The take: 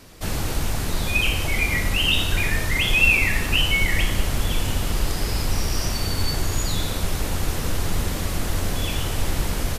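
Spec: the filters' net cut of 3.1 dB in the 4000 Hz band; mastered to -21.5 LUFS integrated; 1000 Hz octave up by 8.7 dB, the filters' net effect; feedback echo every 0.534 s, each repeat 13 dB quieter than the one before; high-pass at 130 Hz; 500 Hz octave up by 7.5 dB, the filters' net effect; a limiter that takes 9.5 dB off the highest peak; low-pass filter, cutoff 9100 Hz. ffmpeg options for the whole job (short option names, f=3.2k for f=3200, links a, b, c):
-af "highpass=130,lowpass=9.1k,equalizer=f=500:t=o:g=7,equalizer=f=1k:t=o:g=9,equalizer=f=4k:t=o:g=-5.5,alimiter=limit=-17dB:level=0:latency=1,aecho=1:1:534|1068|1602:0.224|0.0493|0.0108,volume=4dB"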